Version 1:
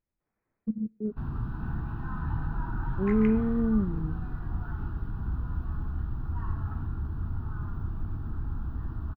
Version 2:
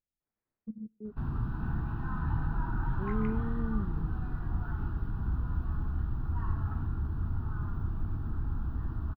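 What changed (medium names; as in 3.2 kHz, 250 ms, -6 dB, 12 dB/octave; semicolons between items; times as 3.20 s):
speech -10.0 dB; second sound -9.5 dB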